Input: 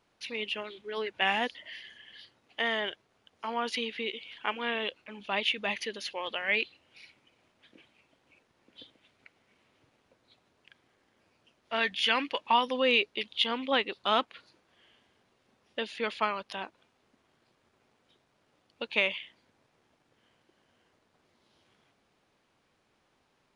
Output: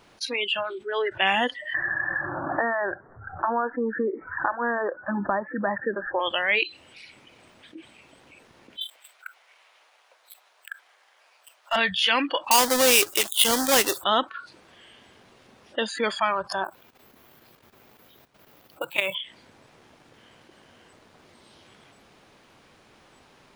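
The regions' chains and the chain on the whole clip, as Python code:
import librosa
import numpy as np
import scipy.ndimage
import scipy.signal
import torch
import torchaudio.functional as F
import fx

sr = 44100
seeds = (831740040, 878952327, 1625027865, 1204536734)

y = fx.chain(x, sr, fx.steep_lowpass(hz=1800.0, slope=96),
    fx.hum_notches(base_hz=60, count=3),
    fx.band_squash(depth_pct=100), at=(1.74, 6.2))
y = fx.chain(y, sr, fx.highpass(hz=650.0, slope=24),
    fx.leveller(passes=2), at=(8.81, 11.76))
y = fx.chain(y, sr, fx.halfwave_hold(),
    fx.bass_treble(bass_db=-9, treble_db=8), at=(12.51, 14.04))
y = fx.chain(y, sr, fx.level_steps(step_db=12),
    fx.quant_float(bits=2), at=(16.64, 19.15))
y = fx.noise_reduce_blind(y, sr, reduce_db=24)
y = fx.env_flatten(y, sr, amount_pct=50)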